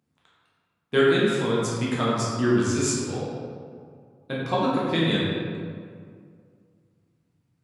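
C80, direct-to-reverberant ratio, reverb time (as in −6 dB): 0.0 dB, −7.0 dB, 2.1 s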